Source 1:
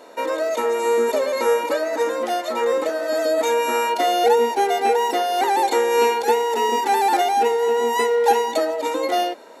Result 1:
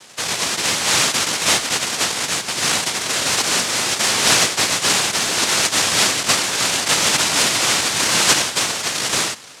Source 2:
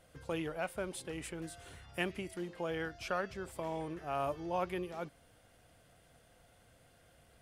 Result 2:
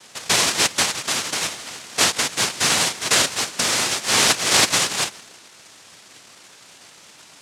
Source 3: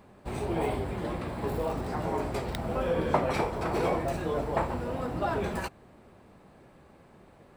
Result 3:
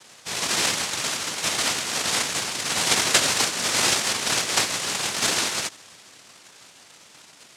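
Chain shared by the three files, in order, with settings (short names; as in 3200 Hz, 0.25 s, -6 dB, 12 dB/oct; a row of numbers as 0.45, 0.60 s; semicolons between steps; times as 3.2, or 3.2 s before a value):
band-limited delay 0.165 s, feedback 48%, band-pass 490 Hz, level -22 dB; noise vocoder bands 1; normalise peaks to -1.5 dBFS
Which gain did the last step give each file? +0.5, +18.5, +6.0 dB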